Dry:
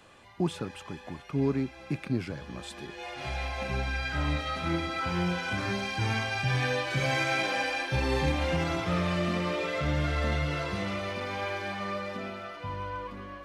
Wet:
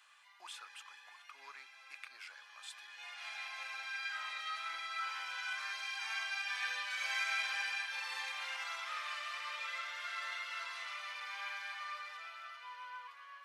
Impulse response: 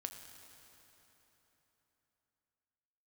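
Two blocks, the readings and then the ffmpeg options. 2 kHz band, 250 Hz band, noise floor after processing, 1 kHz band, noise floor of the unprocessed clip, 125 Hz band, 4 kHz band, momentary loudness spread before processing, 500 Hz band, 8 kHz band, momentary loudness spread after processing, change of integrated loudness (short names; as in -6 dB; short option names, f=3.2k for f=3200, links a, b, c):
-5.5 dB, under -40 dB, -59 dBFS, -10.0 dB, -48 dBFS, under -40 dB, -5.5 dB, 11 LU, -29.0 dB, -5.5 dB, 15 LU, -9.5 dB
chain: -af "highpass=f=1.1k:w=0.5412,highpass=f=1.1k:w=1.3066,volume=-5.5dB"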